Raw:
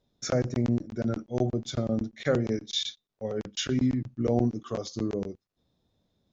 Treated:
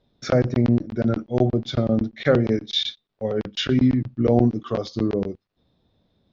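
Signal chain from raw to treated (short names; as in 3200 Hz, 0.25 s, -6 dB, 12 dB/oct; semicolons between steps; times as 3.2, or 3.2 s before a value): LPF 4500 Hz 24 dB/oct; gain +7.5 dB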